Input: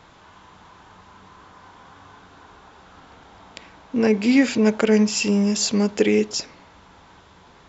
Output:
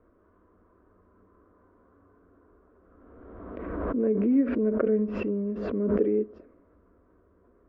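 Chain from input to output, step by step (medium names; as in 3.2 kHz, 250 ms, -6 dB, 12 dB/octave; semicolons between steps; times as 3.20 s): low-pass 1.1 kHz 24 dB/octave; static phaser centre 350 Hz, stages 4; swell ahead of each attack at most 30 dB/s; trim -5.5 dB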